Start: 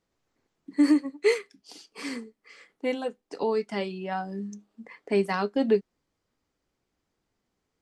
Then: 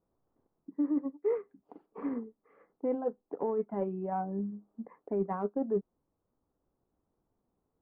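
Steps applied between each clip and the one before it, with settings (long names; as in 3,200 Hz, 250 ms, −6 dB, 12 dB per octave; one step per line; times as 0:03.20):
low-pass filter 1,100 Hz 24 dB per octave
reversed playback
downward compressor 10 to 1, threshold −29 dBFS, peak gain reduction 13.5 dB
reversed playback
transient designer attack +4 dB, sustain −1 dB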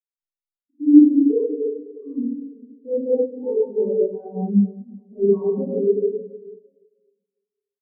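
ambience of single reflections 28 ms −9 dB, 50 ms −8 dB, 75 ms −10.5 dB
convolution reverb RT60 3.1 s, pre-delay 3 ms, DRR −17.5 dB
every bin expanded away from the loudest bin 2.5 to 1
level −3.5 dB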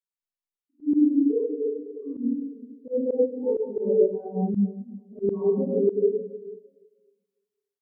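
automatic gain control gain up to 6 dB
volume swells 114 ms
level −5 dB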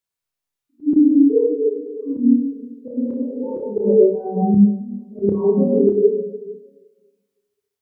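parametric band 100 Hz +9.5 dB 0.78 octaves
healed spectral selection 0:02.93–0:03.63, 390–850 Hz both
flutter between parallel walls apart 5 metres, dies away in 0.35 s
level +7 dB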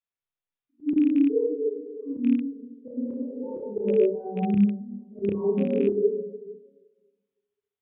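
loose part that buzzes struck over −19 dBFS, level −24 dBFS
downsampling to 8,000 Hz
level −8 dB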